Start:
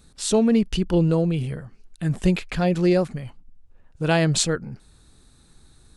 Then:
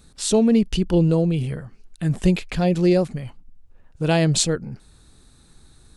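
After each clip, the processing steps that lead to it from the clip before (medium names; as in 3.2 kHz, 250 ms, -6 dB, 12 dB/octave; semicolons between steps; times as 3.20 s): dynamic bell 1.4 kHz, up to -6 dB, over -40 dBFS, Q 1.1; trim +2 dB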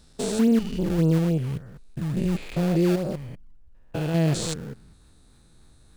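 spectrogram pixelated in time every 200 ms; in parallel at -6.5 dB: decimation with a swept rate 25×, swing 160% 3.5 Hz; on the sum: trim -5 dB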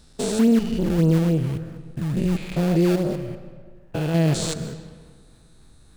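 reverberation RT60 1.7 s, pre-delay 110 ms, DRR 13 dB; trim +2.5 dB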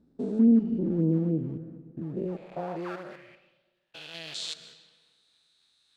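band-pass sweep 270 Hz -> 3.5 kHz, 1.91–3.62 s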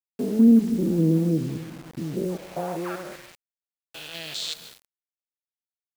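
bit crusher 8-bit; trim +4.5 dB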